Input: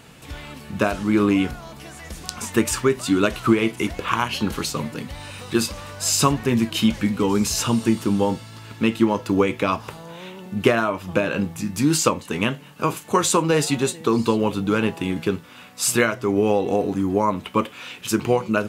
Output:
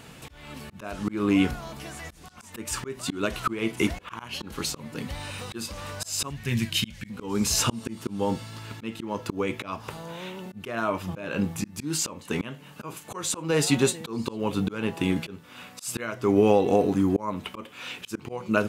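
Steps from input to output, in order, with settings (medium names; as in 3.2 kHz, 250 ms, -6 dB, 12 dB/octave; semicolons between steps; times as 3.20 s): 6.30–7.10 s: high-order bell 550 Hz -12 dB 2.8 oct; slow attack 342 ms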